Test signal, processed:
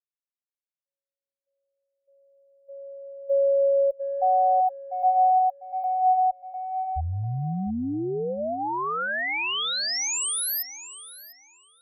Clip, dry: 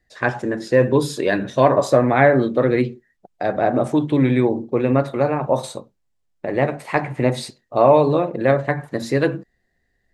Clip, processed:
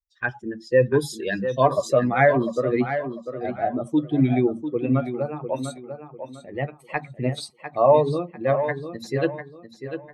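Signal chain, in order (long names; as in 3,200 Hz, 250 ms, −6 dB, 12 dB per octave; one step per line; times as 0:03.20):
spectral dynamics exaggerated over time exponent 2
on a send: tape delay 698 ms, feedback 31%, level −8 dB, low-pass 4,000 Hz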